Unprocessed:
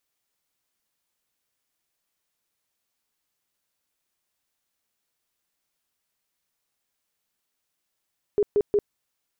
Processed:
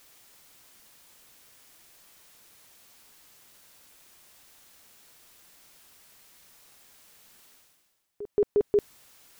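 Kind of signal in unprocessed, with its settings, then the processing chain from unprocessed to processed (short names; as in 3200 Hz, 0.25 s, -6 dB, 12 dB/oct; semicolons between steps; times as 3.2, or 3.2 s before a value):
tone bursts 412 Hz, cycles 20, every 0.18 s, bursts 3, -16.5 dBFS
reverse; upward compressor, threshold -37 dBFS; reverse; pre-echo 0.176 s -16 dB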